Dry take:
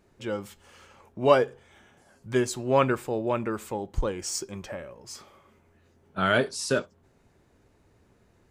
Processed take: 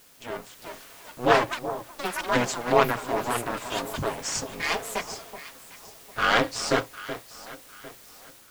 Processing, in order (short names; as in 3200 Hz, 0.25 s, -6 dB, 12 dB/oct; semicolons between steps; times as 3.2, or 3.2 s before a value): minimum comb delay 7.3 ms; steep low-pass 8300 Hz; low shelf 260 Hz -10 dB; ring modulator 120 Hz; in parallel at -7.5 dB: requantised 8-bit, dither triangular; on the sum: AGC gain up to 5 dB; echoes that change speed 0.474 s, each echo +7 st, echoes 2, each echo -6 dB; echo with dull and thin repeats by turns 0.376 s, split 1100 Hz, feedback 57%, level -11 dB